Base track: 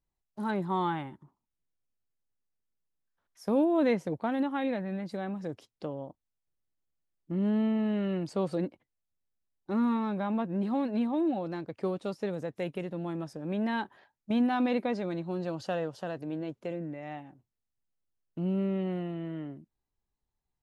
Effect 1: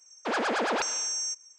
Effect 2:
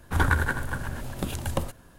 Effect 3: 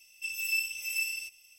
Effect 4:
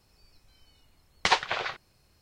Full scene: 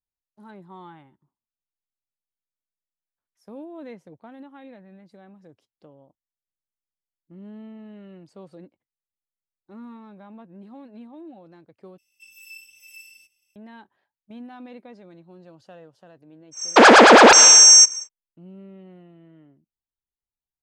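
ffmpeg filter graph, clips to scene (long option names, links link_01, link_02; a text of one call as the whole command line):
ffmpeg -i bed.wav -i cue0.wav -i cue1.wav -i cue2.wav -filter_complex "[0:a]volume=-13.5dB[link_01];[3:a]equalizer=frequency=230:width_type=o:width=0.81:gain=9[link_02];[1:a]alimiter=level_in=23.5dB:limit=-1dB:release=50:level=0:latency=1[link_03];[link_01]asplit=2[link_04][link_05];[link_04]atrim=end=11.984[link_06];[link_02]atrim=end=1.58,asetpts=PTS-STARTPTS,volume=-13.5dB[link_07];[link_05]atrim=start=13.556[link_08];[link_03]atrim=end=1.58,asetpts=PTS-STARTPTS,volume=-0.5dB,afade=type=in:duration=0.1,afade=type=out:start_time=1.48:duration=0.1,adelay=16510[link_09];[link_06][link_07]acrossfade=duration=0.004:curve1=hsin:curve2=hsin[link_10];[link_10][link_08]acrossfade=duration=0.004:curve1=hsin:curve2=hsin[link_11];[link_11][link_09]amix=inputs=2:normalize=0" out.wav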